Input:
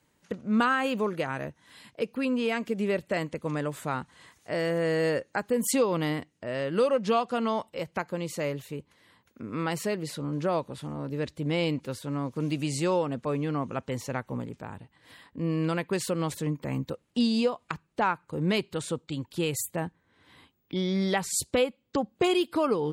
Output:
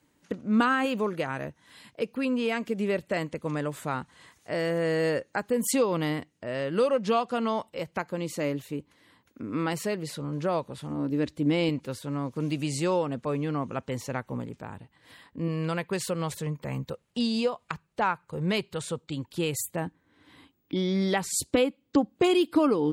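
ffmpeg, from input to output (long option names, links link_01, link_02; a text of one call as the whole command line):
ffmpeg -i in.wav -af "asetnsamples=nb_out_samples=441:pad=0,asendcmd='0.85 equalizer g 0.5;8.18 equalizer g 7;9.73 equalizer g -2.5;10.9 equalizer g 9.5;11.69 equalizer g 0;15.48 equalizer g -11;19.02 equalizer g 0;19.86 equalizer g 9.5',equalizer=frequency=290:width_type=o:width=0.34:gain=8" out.wav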